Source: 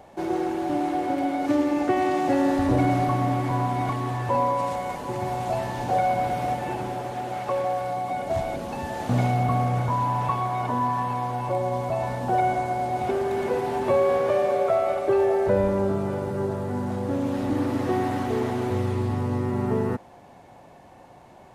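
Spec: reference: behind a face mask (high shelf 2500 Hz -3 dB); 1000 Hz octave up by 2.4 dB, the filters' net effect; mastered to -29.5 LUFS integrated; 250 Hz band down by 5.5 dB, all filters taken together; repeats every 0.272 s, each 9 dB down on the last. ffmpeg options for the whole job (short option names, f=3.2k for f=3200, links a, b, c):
-af "equalizer=f=250:t=o:g=-7.5,equalizer=f=1k:t=o:g=4.5,highshelf=f=2.5k:g=-3,aecho=1:1:272|544|816|1088:0.355|0.124|0.0435|0.0152,volume=-4.5dB"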